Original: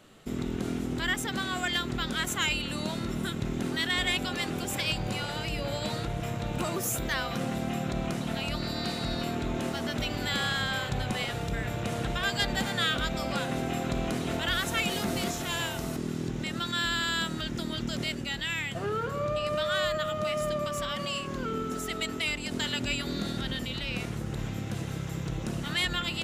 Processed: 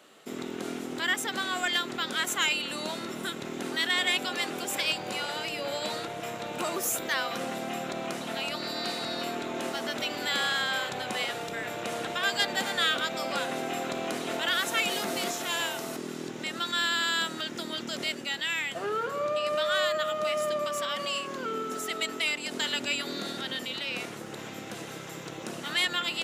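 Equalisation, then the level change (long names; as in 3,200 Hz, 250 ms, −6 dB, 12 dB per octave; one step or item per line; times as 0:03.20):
high-pass filter 350 Hz 12 dB per octave
+2.0 dB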